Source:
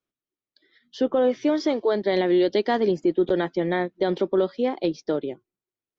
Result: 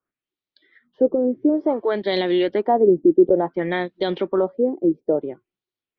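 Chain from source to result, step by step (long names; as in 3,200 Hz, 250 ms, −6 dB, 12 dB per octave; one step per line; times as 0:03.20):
auto-filter low-pass sine 0.57 Hz 330–4,000 Hz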